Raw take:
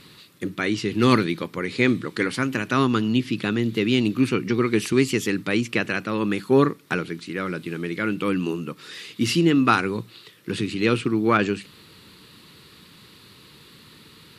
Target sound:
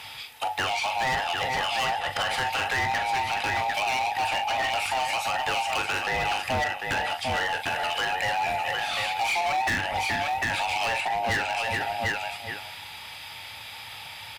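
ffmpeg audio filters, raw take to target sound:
-filter_complex "[0:a]afftfilt=real='real(if(between(b,1,1008),(2*floor((b-1)/48)+1)*48-b,b),0)':imag='imag(if(between(b,1,1008),(2*floor((b-1)/48)+1)*48-b,b),0)*if(between(b,1,1008),-1,1)':win_size=2048:overlap=0.75,highpass=63,asplit=2[a][b];[b]adelay=20,volume=-14dB[c];[a][c]amix=inputs=2:normalize=0,asplit=2[d][e];[e]aecho=0:1:41|748:0.299|0.335[f];[d][f]amix=inputs=2:normalize=0,acrossover=split=2600[g][h];[h]acompressor=threshold=-35dB:ratio=4:attack=1:release=60[i];[g][i]amix=inputs=2:normalize=0,equalizer=f=100:t=o:w=0.67:g=9,equalizer=f=630:t=o:w=0.67:g=-11,equalizer=f=2.5k:t=o:w=0.67:g=6,equalizer=f=6.3k:t=o:w=0.67:g=-3,asplit=2[j][k];[k]adelay=419.8,volume=-13dB,highshelf=f=4k:g=-9.45[l];[j][l]amix=inputs=2:normalize=0,acompressor=threshold=-29dB:ratio=2.5,asoftclip=type=hard:threshold=-29.5dB,volume=7dB"

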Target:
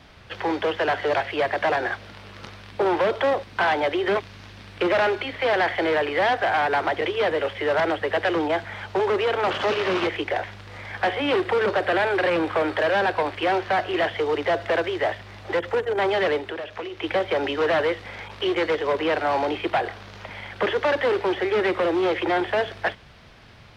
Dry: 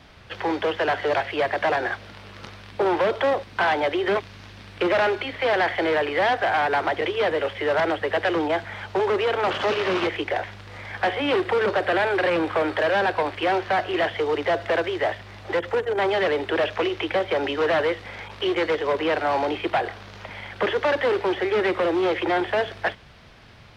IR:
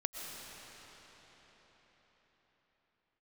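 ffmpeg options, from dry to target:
-filter_complex "[0:a]asettb=1/sr,asplit=3[a][b][c];[a]atrim=end=16.374[d];[b]atrim=start=16.37:end=17.04,asetpts=PTS-STARTPTS,afade=t=in:d=0.004:c=qsin,afade=t=out:st=0.666:d=0.004:c=qsin,acompressor=threshold=-30dB:ratio=6[e];[c]atrim=start=17.036[f];[d][e]acrossfade=d=0.004:c1=hsin:c2=qsin[g];[g][f]acrossfade=d=0.004:c1=qsin:c2=hsin"

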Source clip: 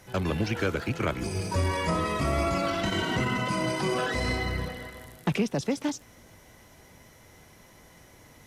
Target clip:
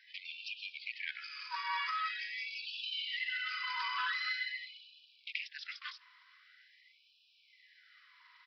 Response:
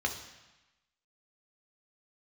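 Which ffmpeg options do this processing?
-af "aresample=11025,aresample=44100,afftfilt=real='re*gte(b*sr/1024,920*pow(2400/920,0.5+0.5*sin(2*PI*0.45*pts/sr)))':imag='im*gte(b*sr/1024,920*pow(2400/920,0.5+0.5*sin(2*PI*0.45*pts/sr)))':win_size=1024:overlap=0.75,volume=-2.5dB"

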